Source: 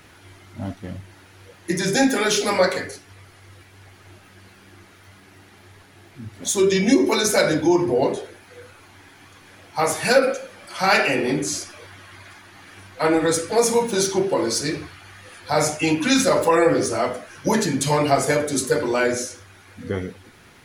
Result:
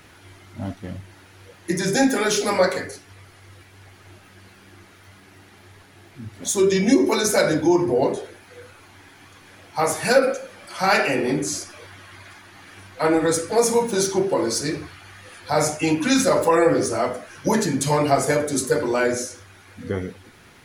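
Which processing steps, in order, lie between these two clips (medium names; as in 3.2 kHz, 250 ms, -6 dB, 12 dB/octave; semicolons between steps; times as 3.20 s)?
dynamic bell 3.1 kHz, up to -4 dB, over -40 dBFS, Q 1.1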